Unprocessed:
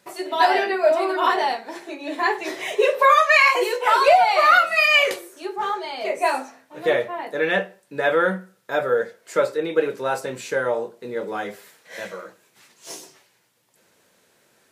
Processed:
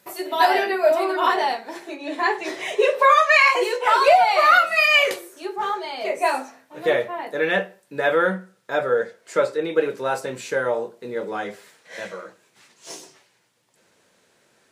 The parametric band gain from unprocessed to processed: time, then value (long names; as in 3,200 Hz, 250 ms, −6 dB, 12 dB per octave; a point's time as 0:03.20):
parametric band 13,000 Hz 0.39 octaves
+12.5 dB
from 0:01.03 +2 dB
from 0:01.96 −9 dB
from 0:04.02 +1 dB
from 0:08.28 −10.5 dB
from 0:09.61 −3 dB
from 0:11.28 −12 dB